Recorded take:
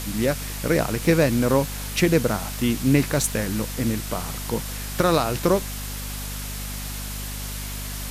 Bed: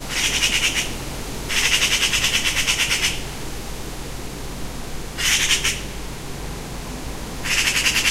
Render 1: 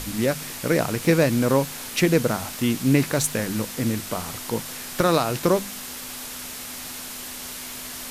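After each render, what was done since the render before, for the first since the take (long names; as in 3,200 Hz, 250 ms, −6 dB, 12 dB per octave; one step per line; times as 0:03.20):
hum removal 50 Hz, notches 4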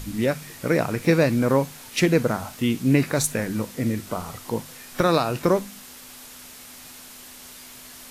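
noise reduction from a noise print 8 dB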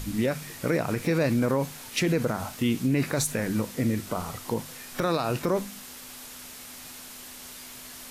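brickwall limiter −16 dBFS, peak gain reduction 10.5 dB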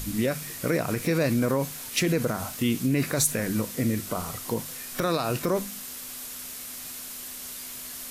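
high-shelf EQ 6,800 Hz +8.5 dB
notch filter 860 Hz, Q 12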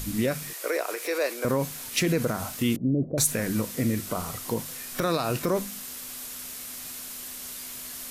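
0:00.53–0:01.45: Butterworth high-pass 380 Hz
0:02.76–0:03.18: elliptic low-pass filter 620 Hz, stop band 80 dB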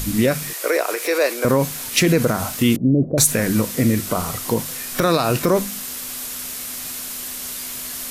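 level +8.5 dB
brickwall limiter −3 dBFS, peak gain reduction 1.5 dB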